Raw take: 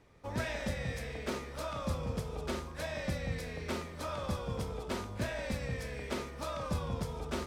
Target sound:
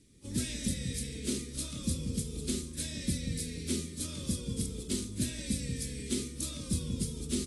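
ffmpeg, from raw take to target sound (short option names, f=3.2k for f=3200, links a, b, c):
-af "firequalizer=gain_entry='entry(110,0);entry(250,7);entry(720,-26);entry(2200,-5);entry(8800,6)':delay=0.05:min_phase=1,aexciter=amount=2.6:drive=4.8:freq=3.3k" -ar 24000 -c:a aac -b:a 32k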